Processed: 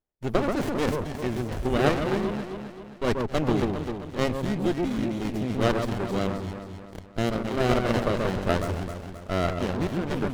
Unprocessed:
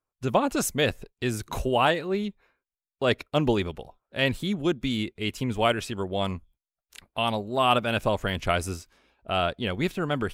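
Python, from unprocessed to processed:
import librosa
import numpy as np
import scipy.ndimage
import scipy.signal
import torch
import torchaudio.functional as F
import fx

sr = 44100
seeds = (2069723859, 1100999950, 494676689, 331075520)

y = fx.echo_alternate(x, sr, ms=132, hz=850.0, feedback_pct=69, wet_db=-2)
y = fx.running_max(y, sr, window=33)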